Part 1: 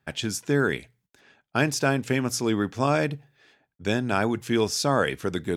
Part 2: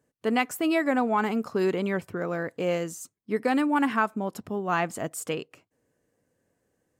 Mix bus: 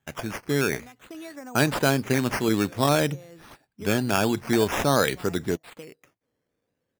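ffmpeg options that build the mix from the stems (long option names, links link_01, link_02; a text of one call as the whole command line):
ffmpeg -i stem1.wav -i stem2.wav -filter_complex "[0:a]volume=-3.5dB,asplit=2[link_01][link_02];[1:a]acompressor=threshold=-30dB:ratio=12,adelay=500,volume=-10.5dB[link_03];[link_02]apad=whole_len=330601[link_04];[link_03][link_04]sidechaincompress=threshold=-32dB:ratio=8:attack=44:release=704[link_05];[link_01][link_05]amix=inputs=2:normalize=0,dynaudnorm=framelen=190:gausssize=7:maxgain=5dB,acrusher=samples=9:mix=1:aa=0.000001:lfo=1:lforange=5.4:lforate=0.51" out.wav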